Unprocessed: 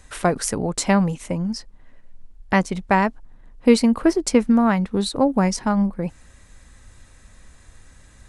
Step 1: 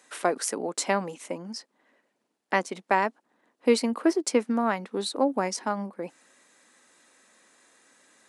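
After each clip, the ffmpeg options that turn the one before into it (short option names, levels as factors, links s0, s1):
-af "highpass=f=270:w=0.5412,highpass=f=270:w=1.3066,volume=0.596"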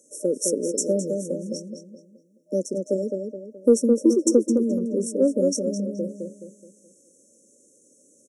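-filter_complex "[0:a]afftfilt=real='re*(1-between(b*sr/4096,610,5400))':imag='im*(1-between(b*sr/4096,610,5400))':win_size=4096:overlap=0.75,acontrast=28,asplit=2[s0][s1];[s1]adelay=212,lowpass=f=3200:p=1,volume=0.596,asplit=2[s2][s3];[s3]adelay=212,lowpass=f=3200:p=1,volume=0.41,asplit=2[s4][s5];[s5]adelay=212,lowpass=f=3200:p=1,volume=0.41,asplit=2[s6][s7];[s7]adelay=212,lowpass=f=3200:p=1,volume=0.41,asplit=2[s8][s9];[s9]adelay=212,lowpass=f=3200:p=1,volume=0.41[s10];[s0][s2][s4][s6][s8][s10]amix=inputs=6:normalize=0"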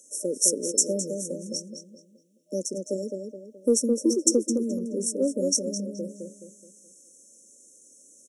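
-af "highshelf=f=2200:t=q:w=3:g=9.5,volume=0.562"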